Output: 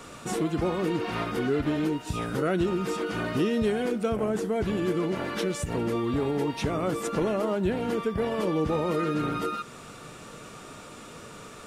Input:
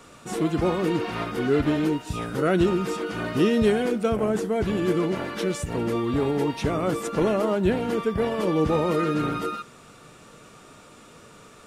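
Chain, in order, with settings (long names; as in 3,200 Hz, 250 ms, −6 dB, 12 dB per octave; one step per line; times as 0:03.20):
downward compressor 2 to 1, threshold −35 dBFS, peak gain reduction 10.5 dB
level +4.5 dB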